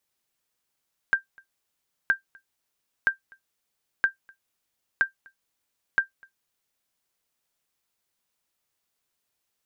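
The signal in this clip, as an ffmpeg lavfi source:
-f lavfi -i "aevalsrc='0.266*(sin(2*PI*1580*mod(t,0.97))*exp(-6.91*mod(t,0.97)/0.12)+0.0335*sin(2*PI*1580*max(mod(t,0.97)-0.25,0))*exp(-6.91*max(mod(t,0.97)-0.25,0)/0.12))':d=5.82:s=44100"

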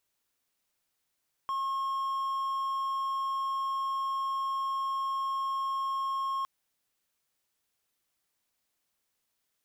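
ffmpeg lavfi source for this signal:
-f lavfi -i "aevalsrc='0.0447*(1-4*abs(mod(1080*t+0.25,1)-0.5))':d=4.96:s=44100"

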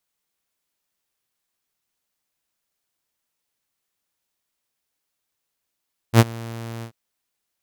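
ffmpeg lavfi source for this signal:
-f lavfi -i "aevalsrc='0.631*(2*mod(115*t,1)-1)':d=0.786:s=44100,afade=t=in:d=0.066,afade=t=out:st=0.066:d=0.039:silence=0.0631,afade=t=out:st=0.7:d=0.086"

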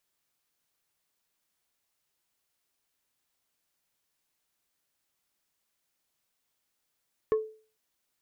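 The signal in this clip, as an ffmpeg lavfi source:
-f lavfi -i "aevalsrc='0.112*pow(10,-3*t/0.4)*sin(2*PI*436*t)+0.0316*pow(10,-3*t/0.133)*sin(2*PI*1090*t)+0.00891*pow(10,-3*t/0.076)*sin(2*PI*1744*t)+0.00251*pow(10,-3*t/0.058)*sin(2*PI*2180*t)+0.000708*pow(10,-3*t/0.042)*sin(2*PI*2834*t)':d=0.45:s=44100"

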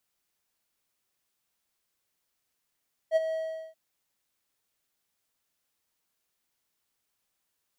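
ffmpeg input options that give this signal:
-f lavfi -i "aevalsrc='0.158*(1-4*abs(mod(642*t+0.25,1)-0.5))':d=0.633:s=44100,afade=t=in:d=0.051,afade=t=out:st=0.051:d=0.026:silence=0.316,afade=t=out:st=0.22:d=0.413"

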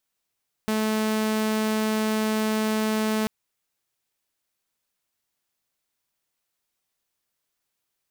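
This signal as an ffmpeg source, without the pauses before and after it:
-f lavfi -i "aevalsrc='0.106*(2*mod(217*t,1)-1)':d=2.59:s=44100"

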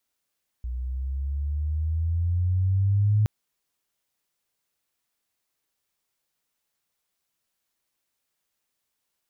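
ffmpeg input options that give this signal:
-f lavfi -i "aevalsrc='pow(10,(-17+11*(t/2.62-1))/20)*sin(2*PI*60.3*2.62/(10*log(2)/12)*(exp(10*log(2)/12*t/2.62)-1))':d=2.62:s=44100"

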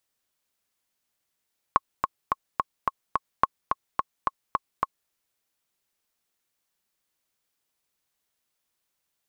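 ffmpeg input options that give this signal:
-f lavfi -i "aevalsrc='pow(10,(-4.5-5*gte(mod(t,6*60/215),60/215))/20)*sin(2*PI*1090*mod(t,60/215))*exp(-6.91*mod(t,60/215)/0.03)':d=3.34:s=44100"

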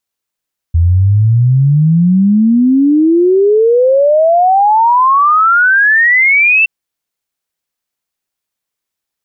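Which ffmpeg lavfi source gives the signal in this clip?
-f lavfi -i "aevalsrc='0.531*clip(min(t,5.92-t)/0.01,0,1)*sin(2*PI*81*5.92/log(2700/81)*(exp(log(2700/81)*t/5.92)-1))':d=5.92:s=44100"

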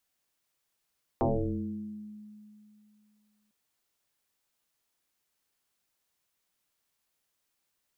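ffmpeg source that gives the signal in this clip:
-f lavfi -i "aevalsrc='0.0794*pow(10,-3*t/2.68)*sin(2*PI*211*t+6.4*pow(10,-3*t/1.42)*sin(2*PI*0.55*211*t))':d=2.3:s=44100"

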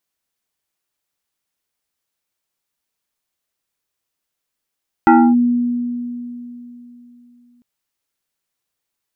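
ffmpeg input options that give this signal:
-f lavfi -i "aevalsrc='0.562*pow(10,-3*t/3.35)*sin(2*PI*242*t+1.9*clip(1-t/0.28,0,1)*sin(2*PI*2.35*242*t))':d=2.55:s=44100"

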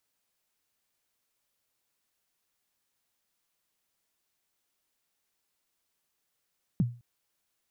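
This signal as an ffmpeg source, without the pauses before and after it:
-f lavfi -i "aevalsrc='0.119*pow(10,-3*t/0.34)*sin(2*PI*(220*0.029/log(120/220)*(exp(log(120/220)*min(t,0.029)/0.029)-1)+120*max(t-0.029,0)))':d=0.21:s=44100"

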